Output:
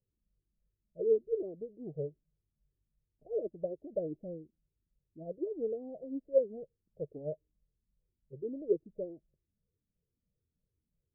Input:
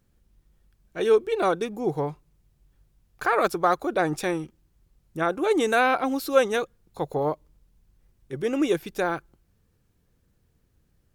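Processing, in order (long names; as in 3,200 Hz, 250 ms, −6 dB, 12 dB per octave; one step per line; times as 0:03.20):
rippled gain that drifts along the octave scale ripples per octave 0.52, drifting −3 Hz, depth 13 dB
Chebyshev low-pass with heavy ripple 640 Hz, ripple 3 dB
expander for the loud parts 1.5 to 1, over −35 dBFS
level −7.5 dB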